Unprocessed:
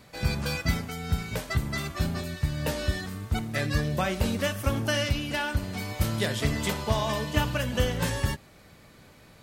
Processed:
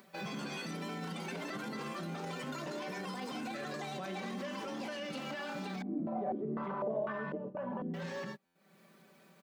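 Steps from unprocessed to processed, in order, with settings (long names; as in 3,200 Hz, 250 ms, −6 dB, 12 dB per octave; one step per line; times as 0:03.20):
high-frequency loss of the air 150 metres
background noise white −66 dBFS
downward compressor 3 to 1, threshold −42 dBFS, peak gain reduction 17 dB
Chebyshev high-pass filter 170 Hz, order 4
comb filter 5.2 ms, depth 72%
delay with pitch and tempo change per echo 157 ms, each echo +5 semitones, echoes 3
noise gate −45 dBFS, range −23 dB
upward compression, threshold −58 dBFS
brickwall limiter −38.5 dBFS, peak gain reduction 13 dB
buffer that repeats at 0:08.45, samples 512, times 8
0:05.82–0:07.94: low-pass on a step sequencer 4 Hz 290–1,500 Hz
level +6 dB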